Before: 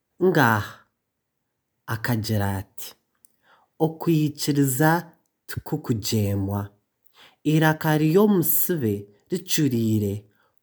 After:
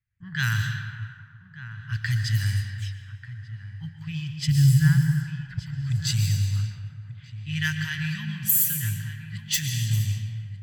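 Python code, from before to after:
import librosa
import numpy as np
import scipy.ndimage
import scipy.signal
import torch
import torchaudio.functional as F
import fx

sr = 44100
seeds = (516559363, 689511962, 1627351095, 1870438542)

p1 = scipy.signal.sosfilt(scipy.signal.cheby1(3, 1.0, [120.0, 1900.0], 'bandstop', fs=sr, output='sos'), x)
p2 = fx.quant_float(p1, sr, bits=2)
p3 = p1 + (p2 * 10.0 ** (-11.0 / 20.0))
p4 = fx.tilt_eq(p3, sr, slope=-4.0, at=(4.47, 5.55))
p5 = p4 + fx.echo_single(p4, sr, ms=1190, db=-13.5, dry=0)
p6 = fx.rev_plate(p5, sr, seeds[0], rt60_s=2.1, hf_ratio=0.95, predelay_ms=110, drr_db=5.0)
y = fx.env_lowpass(p6, sr, base_hz=1400.0, full_db=-17.5)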